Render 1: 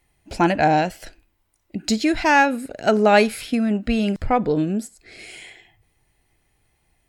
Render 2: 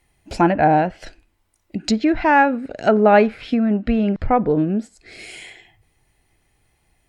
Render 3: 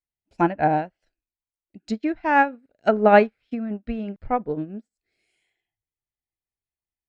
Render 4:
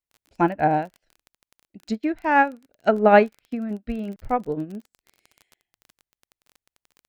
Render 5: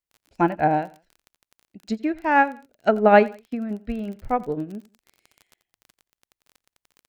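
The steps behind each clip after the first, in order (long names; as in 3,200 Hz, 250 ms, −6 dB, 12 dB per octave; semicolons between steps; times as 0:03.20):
treble cut that deepens with the level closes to 1,700 Hz, closed at −17.5 dBFS; level +2.5 dB
expander for the loud parts 2.5 to 1, over −33 dBFS
surface crackle 23 per second −35 dBFS
repeating echo 87 ms, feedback 30%, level −21 dB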